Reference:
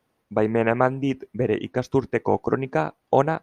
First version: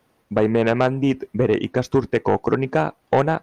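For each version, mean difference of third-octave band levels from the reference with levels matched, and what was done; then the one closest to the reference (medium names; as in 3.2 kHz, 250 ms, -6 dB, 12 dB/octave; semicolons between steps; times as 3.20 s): 2.5 dB: in parallel at -1.5 dB: compression, threshold -26 dBFS, peak gain reduction 14 dB; on the sum: saturation -11.5 dBFS, distortion -13 dB; trim +3 dB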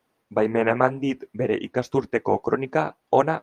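1.5 dB: bass shelf 180 Hz -7 dB; flange 1.9 Hz, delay 2.2 ms, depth 7.2 ms, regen -51%; trim +5 dB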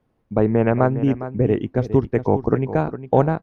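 4.5 dB: tilt EQ -3 dB/octave; on a send: delay 408 ms -12.5 dB; on the sum: trim -1 dB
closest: second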